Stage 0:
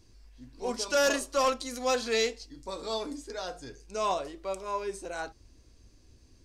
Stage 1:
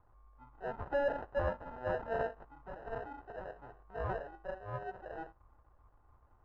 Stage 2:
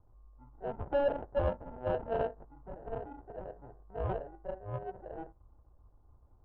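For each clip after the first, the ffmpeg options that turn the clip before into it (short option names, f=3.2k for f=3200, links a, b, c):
-af "acrusher=samples=39:mix=1:aa=0.000001,lowpass=f=1.1k:t=q:w=4.5,equalizer=f=250:t=o:w=1.5:g=-10,volume=-6.5dB"
-af "adynamicsmooth=sensitivity=1:basefreq=630,volume=4.5dB"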